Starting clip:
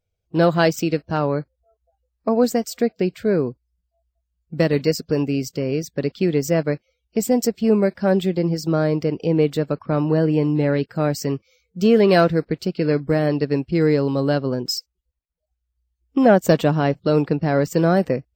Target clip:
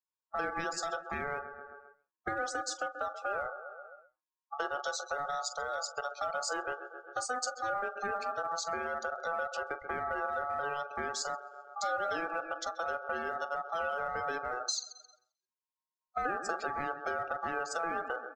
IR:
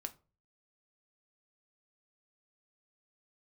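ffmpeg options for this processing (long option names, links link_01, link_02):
-filter_complex "[0:a]lowshelf=frequency=120:gain=-9,asplit=2[link_01][link_02];[link_02]adelay=132,lowpass=frequency=4100:poles=1,volume=-15dB,asplit=2[link_03][link_04];[link_04]adelay=132,lowpass=frequency=4100:poles=1,volume=0.54,asplit=2[link_05][link_06];[link_06]adelay=132,lowpass=frequency=4100:poles=1,volume=0.54,asplit=2[link_07][link_08];[link_08]adelay=132,lowpass=frequency=4100:poles=1,volume=0.54,asplit=2[link_09][link_10];[link_10]adelay=132,lowpass=frequency=4100:poles=1,volume=0.54[link_11];[link_01][link_03][link_05][link_07][link_09][link_11]amix=inputs=6:normalize=0,acrossover=split=400[link_12][link_13];[link_13]acompressor=threshold=-22dB:ratio=6[link_14];[link_12][link_14]amix=inputs=2:normalize=0,lowpass=frequency=6200:width_type=q:width=5.3,equalizer=frequency=890:width_type=o:width=0.61:gain=2,asplit=2[link_15][link_16];[link_16]adelay=43,volume=-12dB[link_17];[link_15][link_17]amix=inputs=2:normalize=0,asplit=2[link_18][link_19];[link_19]aeval=exprs='(mod(7.08*val(0)+1,2)-1)/7.08':channel_layout=same,volume=-11dB[link_20];[link_18][link_20]amix=inputs=2:normalize=0,aeval=exprs='val(0)*sin(2*PI*1000*n/s)':channel_layout=same,acompressor=threshold=-42dB:ratio=2,afftdn=noise_reduction=21:noise_floor=-44"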